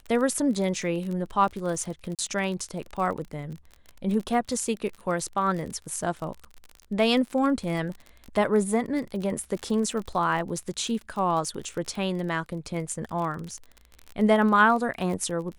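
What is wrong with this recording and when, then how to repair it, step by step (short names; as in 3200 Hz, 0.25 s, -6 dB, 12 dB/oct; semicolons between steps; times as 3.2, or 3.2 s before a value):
crackle 36/s -32 dBFS
2.15–2.19 gap 37 ms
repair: de-click; interpolate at 2.15, 37 ms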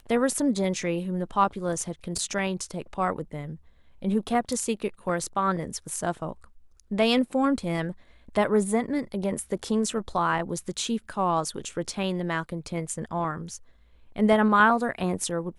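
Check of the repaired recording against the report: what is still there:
none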